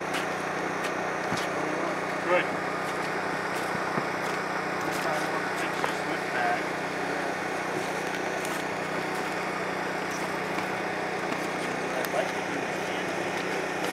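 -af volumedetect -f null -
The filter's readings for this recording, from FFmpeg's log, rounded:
mean_volume: -29.7 dB
max_volume: -11.9 dB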